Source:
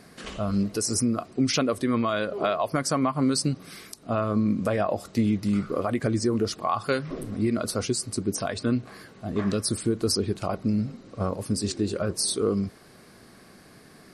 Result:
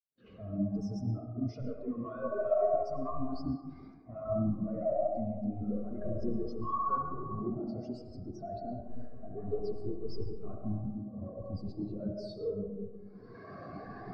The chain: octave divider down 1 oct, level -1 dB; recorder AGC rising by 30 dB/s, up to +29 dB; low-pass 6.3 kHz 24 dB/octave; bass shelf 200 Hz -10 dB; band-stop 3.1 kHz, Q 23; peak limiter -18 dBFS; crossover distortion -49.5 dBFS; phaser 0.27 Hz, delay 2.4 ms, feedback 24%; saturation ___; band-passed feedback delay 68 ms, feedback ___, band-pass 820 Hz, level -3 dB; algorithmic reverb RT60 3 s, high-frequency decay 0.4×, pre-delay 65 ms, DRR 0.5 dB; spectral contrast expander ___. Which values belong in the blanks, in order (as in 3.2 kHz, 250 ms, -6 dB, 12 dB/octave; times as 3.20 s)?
-31.5 dBFS, 80%, 2.5:1